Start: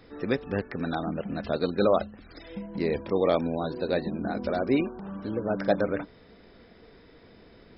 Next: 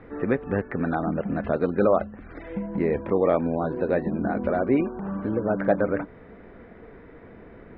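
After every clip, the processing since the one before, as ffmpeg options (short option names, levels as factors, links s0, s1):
-filter_complex "[0:a]lowpass=f=2100:w=0.5412,lowpass=f=2100:w=1.3066,asplit=2[s0][s1];[s1]acompressor=threshold=0.0251:ratio=6,volume=1.33[s2];[s0][s2]amix=inputs=2:normalize=0"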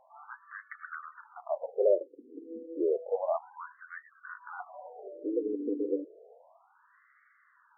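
-af "tiltshelf=f=970:g=3.5,afftfilt=real='re*between(b*sr/1024,340*pow(1600/340,0.5+0.5*sin(2*PI*0.31*pts/sr))/1.41,340*pow(1600/340,0.5+0.5*sin(2*PI*0.31*pts/sr))*1.41)':imag='im*between(b*sr/1024,340*pow(1600/340,0.5+0.5*sin(2*PI*0.31*pts/sr))/1.41,340*pow(1600/340,0.5+0.5*sin(2*PI*0.31*pts/sr))*1.41)':win_size=1024:overlap=0.75,volume=0.562"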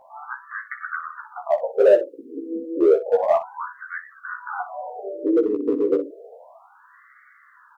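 -filter_complex "[0:a]asplit=2[s0][s1];[s1]asoftclip=type=hard:threshold=0.0473,volume=0.668[s2];[s0][s2]amix=inputs=2:normalize=0,aecho=1:1:15|61:0.631|0.251,volume=2.11"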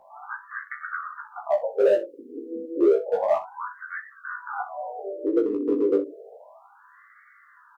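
-filter_complex "[0:a]asplit=2[s0][s1];[s1]adelay=20,volume=0.562[s2];[s0][s2]amix=inputs=2:normalize=0,acrossover=split=280|1900[s3][s4][s5];[s4]alimiter=limit=0.335:level=0:latency=1:release=376[s6];[s3][s6][s5]amix=inputs=3:normalize=0,volume=0.708"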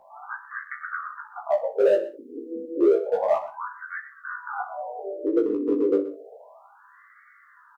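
-filter_complex "[0:a]asplit=2[s0][s1];[s1]adelay=122.4,volume=0.178,highshelf=f=4000:g=-2.76[s2];[s0][s2]amix=inputs=2:normalize=0"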